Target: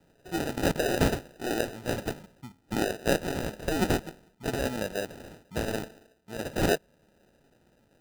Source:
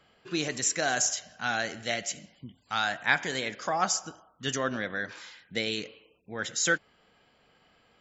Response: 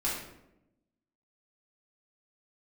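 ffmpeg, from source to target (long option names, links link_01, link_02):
-af "highshelf=frequency=5300:gain=5.5,acrusher=samples=40:mix=1:aa=0.000001"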